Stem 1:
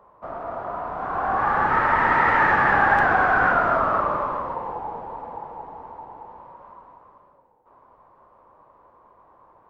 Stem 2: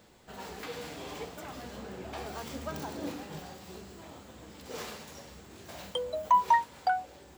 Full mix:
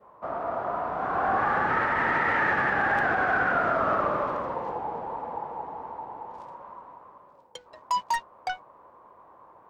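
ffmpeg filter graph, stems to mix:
ffmpeg -i stem1.wav -i stem2.wav -filter_complex "[0:a]highpass=frequency=120:poles=1,adynamicequalizer=threshold=0.0178:dfrequency=1000:dqfactor=2:tfrequency=1000:tqfactor=2:attack=5:release=100:ratio=0.375:range=3.5:mode=cutabove:tftype=bell,volume=1.5dB[link_01];[1:a]lowpass=frequency=6000:width=0.5412,lowpass=frequency=6000:width=1.3066,adynamicequalizer=threshold=0.00501:dfrequency=1900:dqfactor=1.2:tfrequency=1900:tqfactor=1.2:attack=5:release=100:ratio=0.375:range=1.5:mode=boostabove:tftype=bell,aeval=exprs='0.2*(cos(1*acos(clip(val(0)/0.2,-1,1)))-cos(1*PI/2))+0.00398*(cos(5*acos(clip(val(0)/0.2,-1,1)))-cos(5*PI/2))+0.0316*(cos(7*acos(clip(val(0)/0.2,-1,1)))-cos(7*PI/2))':channel_layout=same,adelay=1600,volume=-4.5dB[link_02];[link_01][link_02]amix=inputs=2:normalize=0,alimiter=limit=-15.5dB:level=0:latency=1:release=89" out.wav

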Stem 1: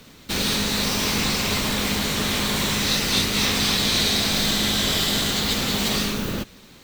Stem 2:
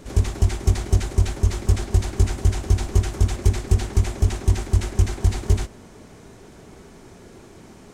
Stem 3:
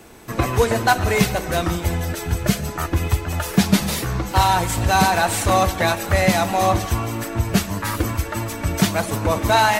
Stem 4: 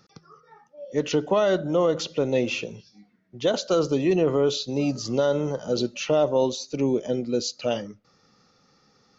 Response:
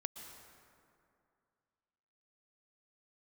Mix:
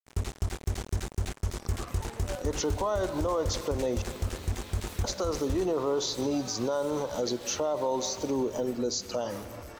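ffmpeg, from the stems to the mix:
-filter_complex "[0:a]acompressor=threshold=-30dB:ratio=6,adelay=2350,volume=-15.5dB[link_01];[1:a]acrusher=bits=3:mix=0:aa=0.5,volume=-7.5dB[link_02];[2:a]acompressor=threshold=-17dB:ratio=6,asoftclip=type=tanh:threshold=-29.5dB,adelay=1450,volume=-13dB,asplit=2[link_03][link_04];[link_04]volume=-12dB[link_05];[3:a]equalizer=frequency=160:width_type=o:width=0.67:gain=-10,equalizer=frequency=1000:width_type=o:width=0.67:gain=10,equalizer=frequency=2500:width_type=o:width=0.67:gain=-12,equalizer=frequency=6300:width_type=o:width=0.67:gain=6,adelay=1500,volume=-1dB,asplit=3[link_06][link_07][link_08];[link_06]atrim=end=4.02,asetpts=PTS-STARTPTS,afade=type=out:start_time=4.016:duration=0.004:curve=hsin[link_09];[link_07]atrim=start=4.02:end=5.04,asetpts=PTS-STARTPTS,volume=0[link_10];[link_08]atrim=start=5.04,asetpts=PTS-STARTPTS,afade=type=in:duration=0.004:curve=hsin[link_11];[link_09][link_10][link_11]concat=n=3:v=0:a=1,asplit=2[link_12][link_13];[link_13]volume=-9dB[link_14];[4:a]atrim=start_sample=2205[link_15];[link_14][link_15]afir=irnorm=-1:irlink=0[link_16];[link_05]aecho=0:1:135:1[link_17];[link_01][link_02][link_03][link_12][link_16][link_17]amix=inputs=6:normalize=0,alimiter=limit=-20.5dB:level=0:latency=1:release=142"

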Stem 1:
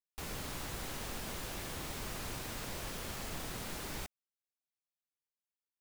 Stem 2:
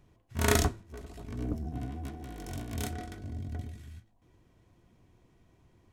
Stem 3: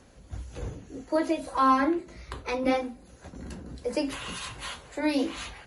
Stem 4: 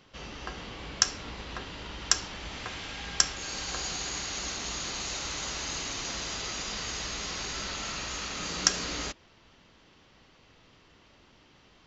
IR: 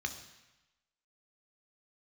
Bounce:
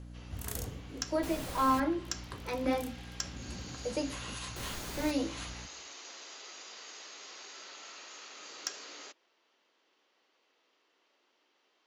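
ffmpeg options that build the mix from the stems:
-filter_complex "[0:a]adelay=1050,volume=-0.5dB,asplit=3[link_01][link_02][link_03];[link_01]atrim=end=1.8,asetpts=PTS-STARTPTS,afade=type=out:start_time=1.796:duration=0.004:curve=hsin[link_04];[link_02]atrim=start=1.8:end=4.56,asetpts=PTS-STARTPTS,volume=0[link_05];[link_03]atrim=start=4.56,asetpts=PTS-STARTPTS,afade=type=in:duration=0.004:curve=hsin[link_06];[link_04][link_05][link_06]concat=n=3:v=0:a=1[link_07];[1:a]aemphasis=mode=production:type=75fm,volume=-20dB,asplit=2[link_08][link_09];[link_09]volume=-13dB[link_10];[2:a]aeval=exprs='val(0)+0.0112*(sin(2*PI*60*n/s)+sin(2*PI*2*60*n/s)/2+sin(2*PI*3*60*n/s)/3+sin(2*PI*4*60*n/s)/4+sin(2*PI*5*60*n/s)/5)':channel_layout=same,volume=-5dB,asplit=2[link_11][link_12];[link_12]volume=-15dB[link_13];[3:a]highpass=frequency=330:width=0.5412,highpass=frequency=330:width=1.3066,asoftclip=type=tanh:threshold=-7dB,volume=-12.5dB[link_14];[4:a]atrim=start_sample=2205[link_15];[link_10][link_13]amix=inputs=2:normalize=0[link_16];[link_16][link_15]afir=irnorm=-1:irlink=0[link_17];[link_07][link_08][link_11][link_14][link_17]amix=inputs=5:normalize=0"

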